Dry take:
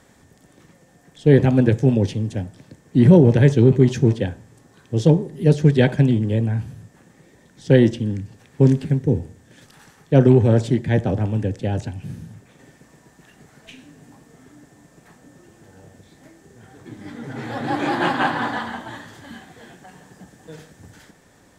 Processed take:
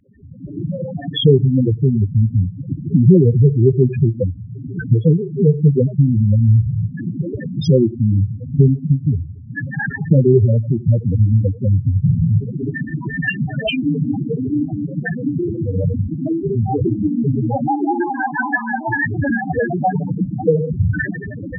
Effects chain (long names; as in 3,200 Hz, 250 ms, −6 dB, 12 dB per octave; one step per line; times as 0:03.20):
camcorder AGC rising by 52 dB per second
spectral peaks only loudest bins 4
octave-band graphic EQ 250/500/1,000/2,000 Hz −5/+4/−4/+10 dB
every ending faded ahead of time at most 300 dB per second
level +4 dB